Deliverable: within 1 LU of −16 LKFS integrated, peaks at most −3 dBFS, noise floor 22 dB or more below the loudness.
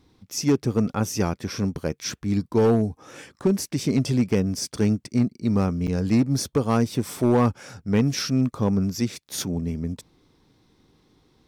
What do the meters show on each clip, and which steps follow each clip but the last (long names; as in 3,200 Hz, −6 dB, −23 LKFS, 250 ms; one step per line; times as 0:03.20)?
share of clipped samples 0.9%; peaks flattened at −13.0 dBFS; number of dropouts 1; longest dropout 7.8 ms; integrated loudness −24.0 LKFS; sample peak −13.0 dBFS; target loudness −16.0 LKFS
→ clipped peaks rebuilt −13 dBFS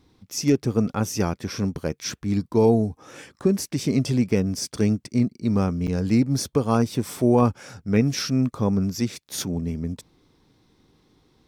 share of clipped samples 0.0%; number of dropouts 1; longest dropout 7.8 ms
→ repair the gap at 0:05.87, 7.8 ms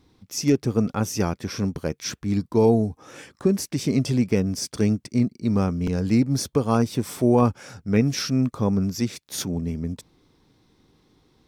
number of dropouts 0; integrated loudness −23.5 LKFS; sample peak −7.0 dBFS; target loudness −16.0 LKFS
→ level +7.5 dB
brickwall limiter −3 dBFS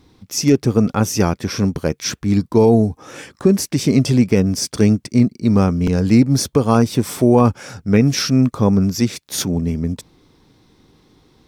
integrated loudness −16.5 LKFS; sample peak −3.0 dBFS; background noise floor −57 dBFS